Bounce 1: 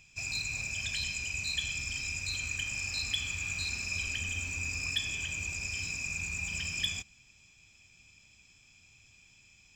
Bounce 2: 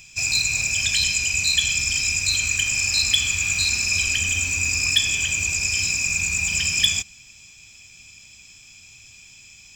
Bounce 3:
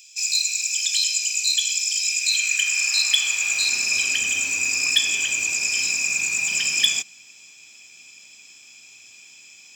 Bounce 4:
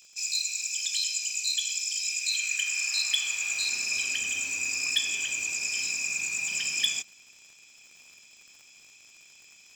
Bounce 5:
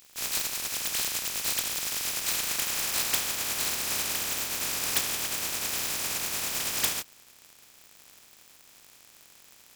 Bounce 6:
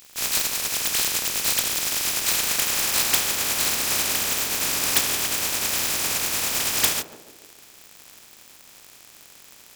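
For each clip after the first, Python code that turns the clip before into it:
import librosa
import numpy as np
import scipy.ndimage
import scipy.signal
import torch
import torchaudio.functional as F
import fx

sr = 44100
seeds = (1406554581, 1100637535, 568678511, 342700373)

y1 = fx.high_shelf(x, sr, hz=3500.0, db=10.5)
y1 = y1 * librosa.db_to_amplitude(8.5)
y2 = fx.filter_sweep_highpass(y1, sr, from_hz=3900.0, to_hz=320.0, start_s=1.97, end_s=3.82, q=1.0)
y3 = fx.dmg_crackle(y2, sr, seeds[0], per_s=100.0, level_db=-37.0)
y3 = y3 * librosa.db_to_amplitude(-7.5)
y4 = fx.spec_flatten(y3, sr, power=0.13)
y5 = fx.echo_banded(y4, sr, ms=145, feedback_pct=59, hz=370.0, wet_db=-8)
y5 = y5 * librosa.db_to_amplitude(6.5)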